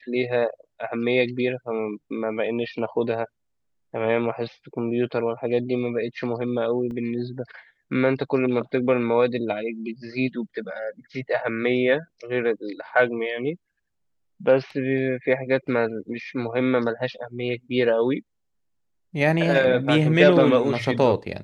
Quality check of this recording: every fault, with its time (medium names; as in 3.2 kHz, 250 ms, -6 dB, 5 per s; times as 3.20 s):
6.91 s: dropout 2 ms